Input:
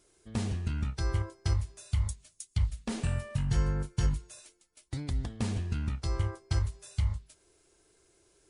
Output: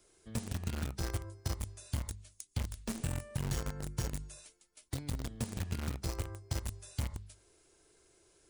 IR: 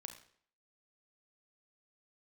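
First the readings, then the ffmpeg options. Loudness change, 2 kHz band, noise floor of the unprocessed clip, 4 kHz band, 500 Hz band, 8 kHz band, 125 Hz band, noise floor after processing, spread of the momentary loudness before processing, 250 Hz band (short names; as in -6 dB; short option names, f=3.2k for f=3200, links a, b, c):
-6.5 dB, -3.5 dB, -68 dBFS, -2.0 dB, -3.0 dB, +1.0 dB, -7.0 dB, -68 dBFS, 7 LU, -4.5 dB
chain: -filter_complex "[0:a]bandreject=f=50:t=h:w=6,bandreject=f=100:t=h:w=6,bandreject=f=150:t=h:w=6,bandreject=f=200:t=h:w=6,bandreject=f=250:t=h:w=6,bandreject=f=300:t=h:w=6,bandreject=f=350:t=h:w=6,bandreject=f=400:t=h:w=6,acrossover=split=200|580|6400[a][b][c][d];[a]acompressor=threshold=-40dB:ratio=4[e];[b]acompressor=threshold=-51dB:ratio=4[f];[c]acompressor=threshold=-56dB:ratio=4[g];[d]acompressor=threshold=-52dB:ratio=4[h];[e][f][g][h]amix=inputs=4:normalize=0,asplit=2[i][j];[j]acrusher=bits=5:mix=0:aa=0.000001,volume=-3.5dB[k];[i][k]amix=inputs=2:normalize=0"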